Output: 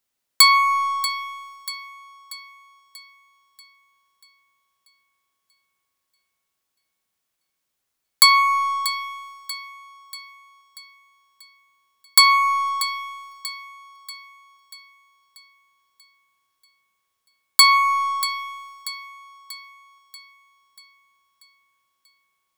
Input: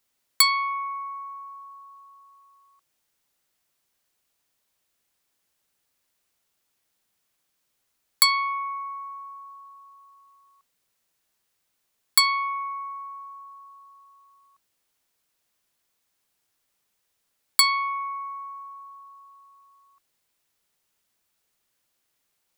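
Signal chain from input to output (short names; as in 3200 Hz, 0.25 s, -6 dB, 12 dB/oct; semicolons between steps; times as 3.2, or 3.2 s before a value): sample leveller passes 2; split-band echo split 1400 Hz, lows 88 ms, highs 0.637 s, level -13 dB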